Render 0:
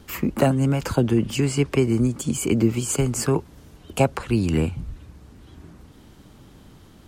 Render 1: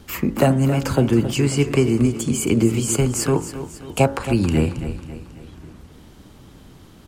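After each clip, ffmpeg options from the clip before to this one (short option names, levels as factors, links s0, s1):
-filter_complex "[0:a]bandreject=f=54.98:t=h:w=4,bandreject=f=109.96:t=h:w=4,bandreject=f=164.94:t=h:w=4,bandreject=f=219.92:t=h:w=4,bandreject=f=274.9:t=h:w=4,bandreject=f=329.88:t=h:w=4,bandreject=f=384.86:t=h:w=4,bandreject=f=439.84:t=h:w=4,bandreject=f=494.82:t=h:w=4,bandreject=f=549.8:t=h:w=4,bandreject=f=604.78:t=h:w=4,bandreject=f=659.76:t=h:w=4,bandreject=f=714.74:t=h:w=4,bandreject=f=769.72:t=h:w=4,bandreject=f=824.7:t=h:w=4,bandreject=f=879.68:t=h:w=4,bandreject=f=934.66:t=h:w=4,bandreject=f=989.64:t=h:w=4,bandreject=f=1044.62:t=h:w=4,bandreject=f=1099.6:t=h:w=4,bandreject=f=1154.58:t=h:w=4,bandreject=f=1209.56:t=h:w=4,bandreject=f=1264.54:t=h:w=4,bandreject=f=1319.52:t=h:w=4,bandreject=f=1374.5:t=h:w=4,bandreject=f=1429.48:t=h:w=4,bandreject=f=1484.46:t=h:w=4,bandreject=f=1539.44:t=h:w=4,bandreject=f=1594.42:t=h:w=4,bandreject=f=1649.4:t=h:w=4,bandreject=f=1704.38:t=h:w=4,bandreject=f=1759.36:t=h:w=4,bandreject=f=1814.34:t=h:w=4,bandreject=f=1869.32:t=h:w=4,bandreject=f=1924.3:t=h:w=4,bandreject=f=1979.28:t=h:w=4,bandreject=f=2034.26:t=h:w=4,asplit=2[s0][s1];[s1]aecho=0:1:272|544|816|1088|1360:0.251|0.118|0.0555|0.0261|0.0123[s2];[s0][s2]amix=inputs=2:normalize=0,volume=1.41"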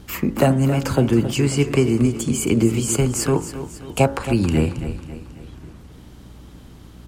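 -af "aeval=exprs='val(0)+0.00708*(sin(2*PI*60*n/s)+sin(2*PI*2*60*n/s)/2+sin(2*PI*3*60*n/s)/3+sin(2*PI*4*60*n/s)/4+sin(2*PI*5*60*n/s)/5)':c=same"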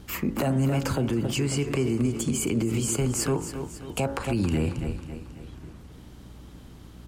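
-af "alimiter=limit=0.224:level=0:latency=1:release=55,volume=0.668"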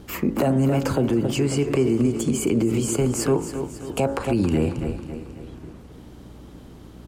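-af "equalizer=f=430:t=o:w=2.4:g=7,aecho=1:1:651:0.0794"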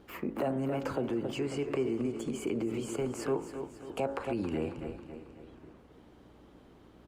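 -af "bass=f=250:g=-9,treble=f=4000:g=-10,volume=0.376" -ar 48000 -c:a libopus -b:a 48k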